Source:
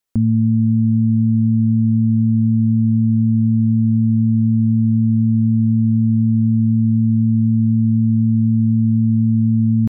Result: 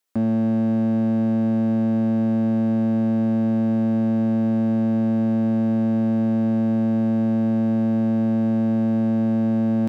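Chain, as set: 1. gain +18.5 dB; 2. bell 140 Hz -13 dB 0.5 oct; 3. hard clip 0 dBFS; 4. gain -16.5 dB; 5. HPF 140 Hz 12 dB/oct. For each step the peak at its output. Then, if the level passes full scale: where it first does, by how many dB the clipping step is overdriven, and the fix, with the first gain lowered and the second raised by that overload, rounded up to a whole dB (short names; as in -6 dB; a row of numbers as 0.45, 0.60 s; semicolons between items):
+9.0, +7.0, 0.0, -16.5, -14.0 dBFS; step 1, 7.0 dB; step 1 +11.5 dB, step 4 -9.5 dB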